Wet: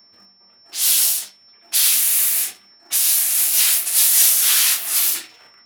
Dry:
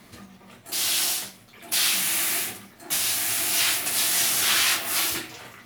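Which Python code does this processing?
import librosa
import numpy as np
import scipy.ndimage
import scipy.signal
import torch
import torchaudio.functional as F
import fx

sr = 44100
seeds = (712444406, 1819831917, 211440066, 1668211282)

p1 = fx.env_lowpass(x, sr, base_hz=1300.0, full_db=-21.5)
p2 = p1 + 10.0 ** (-50.0 / 20.0) * np.sin(2.0 * np.pi * 5400.0 * np.arange(len(p1)) / sr)
p3 = np.sign(p2) * np.maximum(np.abs(p2) - 10.0 ** (-38.0 / 20.0), 0.0)
p4 = p2 + F.gain(torch.from_numpy(p3), -4.0).numpy()
p5 = fx.riaa(p4, sr, side='recording')
p6 = fx.am_noise(p5, sr, seeds[0], hz=5.7, depth_pct=50)
y = F.gain(torch.from_numpy(p6), -5.5).numpy()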